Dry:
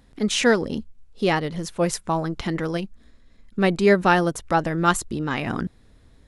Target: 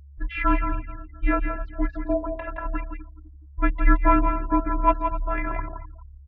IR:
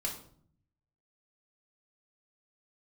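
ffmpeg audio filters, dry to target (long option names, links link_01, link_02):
-filter_complex "[0:a]asplit=3[link_01][link_02][link_03];[link_01]afade=type=out:start_time=2.14:duration=0.02[link_04];[link_02]lowshelf=frequency=700:width_type=q:width=3:gain=-8,afade=type=in:start_time=2.14:duration=0.02,afade=type=out:start_time=2.64:duration=0.02[link_05];[link_03]afade=type=in:start_time=2.64:duration=0.02[link_06];[link_04][link_05][link_06]amix=inputs=3:normalize=0,asplit=2[link_07][link_08];[link_08]asplit=4[link_09][link_10][link_11][link_12];[link_09]adelay=255,afreqshift=50,volume=-14.5dB[link_13];[link_10]adelay=510,afreqshift=100,volume=-22.5dB[link_14];[link_11]adelay=765,afreqshift=150,volume=-30.4dB[link_15];[link_12]adelay=1020,afreqshift=200,volume=-38.4dB[link_16];[link_13][link_14][link_15][link_16]amix=inputs=4:normalize=0[link_17];[link_07][link_17]amix=inputs=2:normalize=0,afftfilt=real='re*gte(hypot(re,im),0.0224)':imag='im*gte(hypot(re,im),0.0224)':win_size=1024:overlap=0.75,afftfilt=real='hypot(re,im)*cos(PI*b)':imag='0':win_size=512:overlap=0.75,asplit=2[link_18][link_19];[link_19]aecho=0:1:169:0.447[link_20];[link_18][link_20]amix=inputs=2:normalize=0,aeval=exprs='val(0)+0.00447*sin(2*PI*450*n/s)':channel_layout=same,highpass=frequency=250:width_type=q:width=0.5412,highpass=frequency=250:width_type=q:width=1.307,lowpass=frequency=2600:width_type=q:width=0.5176,lowpass=frequency=2600:width_type=q:width=0.7071,lowpass=frequency=2600:width_type=q:width=1.932,afreqshift=-380,volume=4dB"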